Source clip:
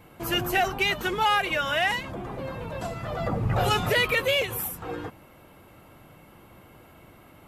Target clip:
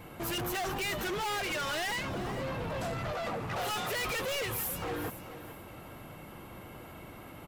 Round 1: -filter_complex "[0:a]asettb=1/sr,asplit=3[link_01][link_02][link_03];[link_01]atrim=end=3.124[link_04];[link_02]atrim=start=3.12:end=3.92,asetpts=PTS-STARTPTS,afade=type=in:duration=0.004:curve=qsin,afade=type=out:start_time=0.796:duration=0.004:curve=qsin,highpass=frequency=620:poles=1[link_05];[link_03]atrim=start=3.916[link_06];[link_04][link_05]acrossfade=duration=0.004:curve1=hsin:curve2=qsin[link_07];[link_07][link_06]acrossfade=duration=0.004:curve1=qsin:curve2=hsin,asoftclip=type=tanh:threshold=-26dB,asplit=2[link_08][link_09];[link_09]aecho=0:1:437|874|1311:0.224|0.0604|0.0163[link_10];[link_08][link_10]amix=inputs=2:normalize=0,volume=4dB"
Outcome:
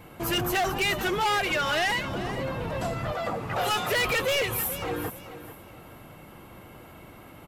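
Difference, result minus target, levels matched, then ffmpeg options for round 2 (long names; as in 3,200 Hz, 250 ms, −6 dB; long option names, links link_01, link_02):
soft clipping: distortion −6 dB
-filter_complex "[0:a]asettb=1/sr,asplit=3[link_01][link_02][link_03];[link_01]atrim=end=3.124[link_04];[link_02]atrim=start=3.12:end=3.92,asetpts=PTS-STARTPTS,afade=type=in:duration=0.004:curve=qsin,afade=type=out:start_time=0.796:duration=0.004:curve=qsin,highpass=frequency=620:poles=1[link_05];[link_03]atrim=start=3.916[link_06];[link_04][link_05]acrossfade=duration=0.004:curve1=hsin:curve2=qsin[link_07];[link_07][link_06]acrossfade=duration=0.004:curve1=qsin:curve2=hsin,asoftclip=type=tanh:threshold=-36.5dB,asplit=2[link_08][link_09];[link_09]aecho=0:1:437|874|1311:0.224|0.0604|0.0163[link_10];[link_08][link_10]amix=inputs=2:normalize=0,volume=4dB"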